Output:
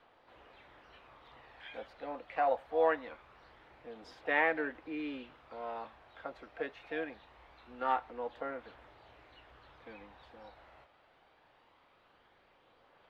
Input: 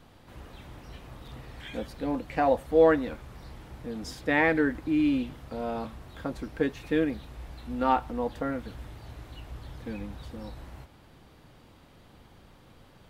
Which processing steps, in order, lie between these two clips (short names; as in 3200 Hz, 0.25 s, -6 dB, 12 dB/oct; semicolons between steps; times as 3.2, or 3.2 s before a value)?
harmoniser +7 st -18 dB; phaser 0.23 Hz, delay 1.6 ms, feedback 21%; three-band isolator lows -21 dB, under 430 Hz, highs -24 dB, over 3700 Hz; gain -5 dB